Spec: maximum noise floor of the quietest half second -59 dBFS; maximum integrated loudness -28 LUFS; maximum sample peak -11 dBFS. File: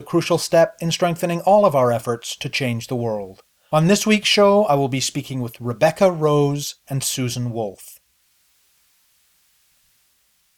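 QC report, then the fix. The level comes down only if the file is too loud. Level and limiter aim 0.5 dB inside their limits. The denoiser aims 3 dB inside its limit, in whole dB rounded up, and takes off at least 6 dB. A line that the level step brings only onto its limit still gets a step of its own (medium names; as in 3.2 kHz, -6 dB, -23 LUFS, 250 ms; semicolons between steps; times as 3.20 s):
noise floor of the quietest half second -63 dBFS: pass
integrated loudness -19.0 LUFS: fail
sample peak -4.0 dBFS: fail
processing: trim -9.5 dB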